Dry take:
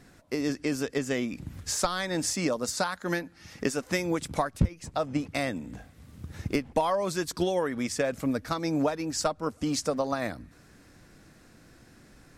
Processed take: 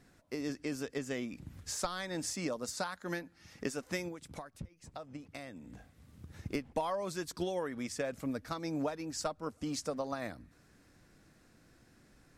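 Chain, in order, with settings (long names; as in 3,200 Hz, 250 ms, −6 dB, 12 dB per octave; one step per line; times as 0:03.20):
0:04.08–0:06.46: downward compressor 4 to 1, threshold −35 dBFS, peak gain reduction 15 dB
level −8.5 dB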